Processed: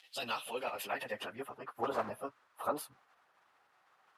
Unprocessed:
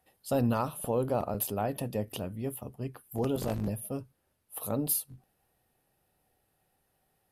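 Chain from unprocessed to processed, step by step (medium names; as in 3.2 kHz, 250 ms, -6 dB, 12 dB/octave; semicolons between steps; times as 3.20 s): dynamic bell 140 Hz, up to -6 dB, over -45 dBFS, Q 0.97; crackle 180 per s -52 dBFS; plain phase-vocoder stretch 0.57×; band-pass sweep 3.2 kHz -> 1.2 kHz, 0.34–1.65 s; trim +15.5 dB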